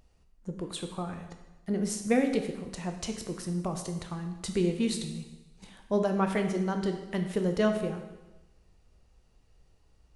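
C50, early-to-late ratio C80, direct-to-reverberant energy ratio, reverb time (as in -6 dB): 7.5 dB, 9.0 dB, 4.5 dB, 1.1 s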